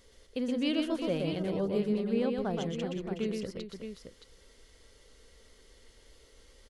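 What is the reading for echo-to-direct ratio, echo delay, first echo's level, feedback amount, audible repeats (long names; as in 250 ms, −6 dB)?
−2.0 dB, 122 ms, −4.0 dB, repeats not evenly spaced, 3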